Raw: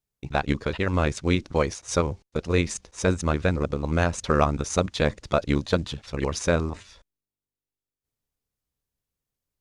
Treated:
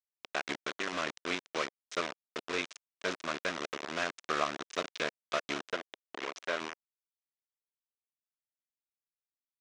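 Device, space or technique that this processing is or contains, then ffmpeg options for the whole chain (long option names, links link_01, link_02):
hand-held game console: -filter_complex "[0:a]acrusher=bits=3:mix=0:aa=0.000001,highpass=460,equalizer=frequency=510:width_type=q:width=4:gain=-6,equalizer=frequency=840:width_type=q:width=4:gain=-9,equalizer=frequency=4600:width_type=q:width=4:gain=-4,lowpass=frequency=5900:width=0.5412,lowpass=frequency=5900:width=1.3066,asettb=1/sr,asplit=3[link_01][link_02][link_03];[link_01]atrim=end=5.734[link_04];[link_02]atrim=start=5.73:end=6.61,asetpts=PTS-STARTPTS,afade=type=in:duration=0.004:curve=qsin,afade=type=out:start_time=0.876:duration=0.004:curve=qsin,bass=frequency=250:gain=-9,treble=frequency=4000:gain=-6[link_05];[link_03]atrim=start=6.606[link_06];[link_04][link_05]acrossfade=duration=0.004:curve1=hsin:curve2=qsin[link_07];[link_07][link_06]acrossfade=duration=0.004:curve1=qsin:curve2=hsin,volume=-6.5dB"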